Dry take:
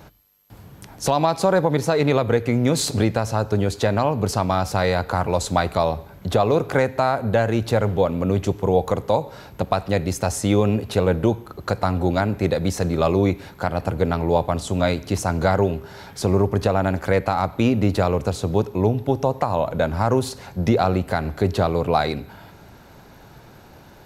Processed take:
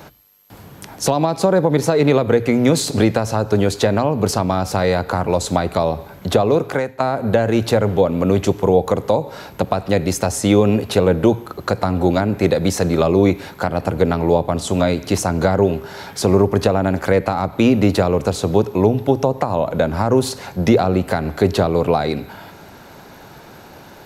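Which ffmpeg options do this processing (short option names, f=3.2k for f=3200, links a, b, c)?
-filter_complex "[0:a]asplit=2[a][b];[a]atrim=end=7,asetpts=PTS-STARTPTS,afade=t=out:st=6.44:d=0.56:silence=0.141254[c];[b]atrim=start=7,asetpts=PTS-STARTPTS,afade=t=in:d=0.004:c=hsin:silence=0.141254[d];[c][d]concat=n=2:v=0:a=1,lowshelf=f=120:g=-10,bandreject=f=60:t=h:w=6,bandreject=f=120:t=h:w=6,acrossover=split=490[e][f];[f]acompressor=threshold=-27dB:ratio=6[g];[e][g]amix=inputs=2:normalize=0,volume=7.5dB"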